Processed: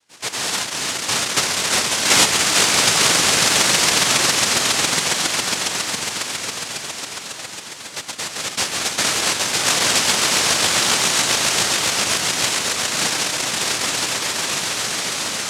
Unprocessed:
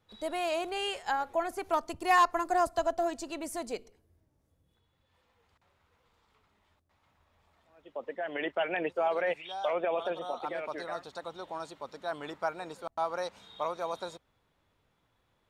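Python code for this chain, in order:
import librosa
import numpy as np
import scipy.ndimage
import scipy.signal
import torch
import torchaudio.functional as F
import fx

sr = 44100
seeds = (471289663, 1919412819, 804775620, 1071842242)

y = fx.echo_swell(x, sr, ms=137, loudest=8, wet_db=-5.0)
y = fx.noise_vocoder(y, sr, seeds[0], bands=1)
y = y * librosa.db_to_amplitude(7.5)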